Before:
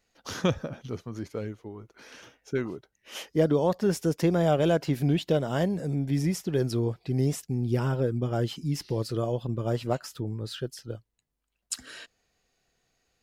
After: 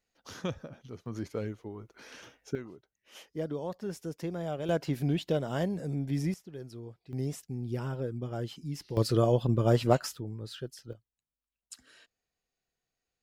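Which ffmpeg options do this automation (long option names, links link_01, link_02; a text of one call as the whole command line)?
ffmpeg -i in.wav -af "asetnsamples=nb_out_samples=441:pad=0,asendcmd='1.06 volume volume -1dB;2.55 volume volume -12dB;4.69 volume volume -4.5dB;6.34 volume volume -17dB;7.13 volume volume -8dB;8.97 volume volume 4dB;10.15 volume volume -6dB;10.93 volume volume -14.5dB',volume=-9.5dB" out.wav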